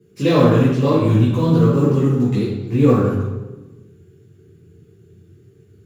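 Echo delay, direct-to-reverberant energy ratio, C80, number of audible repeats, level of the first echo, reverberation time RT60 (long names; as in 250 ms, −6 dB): no echo audible, −9.5 dB, 2.5 dB, no echo audible, no echo audible, 1.1 s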